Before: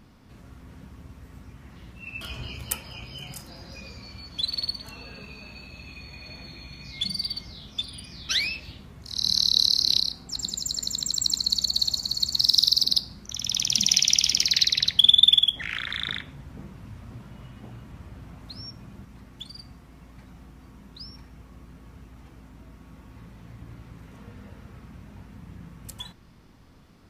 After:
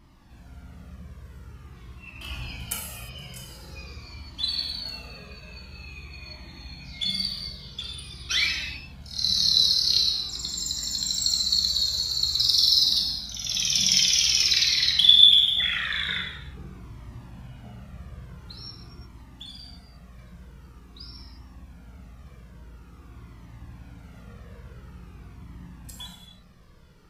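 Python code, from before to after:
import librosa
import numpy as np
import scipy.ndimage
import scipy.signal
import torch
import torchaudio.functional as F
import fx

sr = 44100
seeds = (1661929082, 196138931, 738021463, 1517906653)

y = fx.rev_gated(x, sr, seeds[0], gate_ms=380, shape='falling', drr_db=-1.5)
y = fx.dynamic_eq(y, sr, hz=1900.0, q=0.85, threshold_db=-36.0, ratio=4.0, max_db=5)
y = fx.comb_cascade(y, sr, direction='falling', hz=0.47)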